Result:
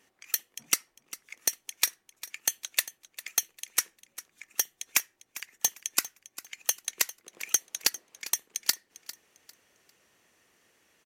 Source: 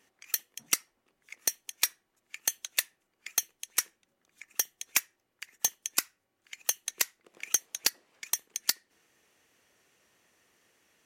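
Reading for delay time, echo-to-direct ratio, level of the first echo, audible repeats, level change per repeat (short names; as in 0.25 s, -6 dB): 0.4 s, -16.0 dB, -16.5 dB, 2, -11.5 dB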